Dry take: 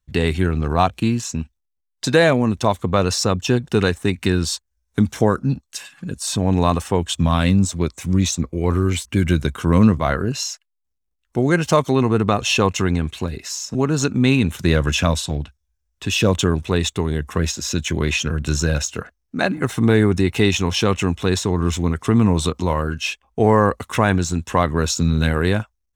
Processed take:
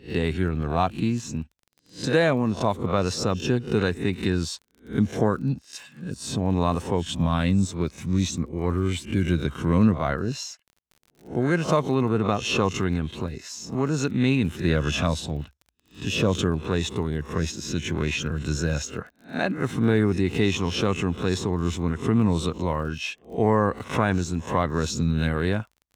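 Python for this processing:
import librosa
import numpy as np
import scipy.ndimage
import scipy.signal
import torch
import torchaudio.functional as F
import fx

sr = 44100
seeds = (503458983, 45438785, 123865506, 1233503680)

y = fx.spec_swells(x, sr, rise_s=0.31)
y = fx.highpass(y, sr, hz=160.0, slope=6)
y = fx.high_shelf(y, sr, hz=7000.0, db=-9.0)
y = fx.dmg_crackle(y, sr, seeds[0], per_s=32.0, level_db=-34.0)
y = fx.low_shelf(y, sr, hz=210.0, db=7.5)
y = F.gain(torch.from_numpy(y), -7.0).numpy()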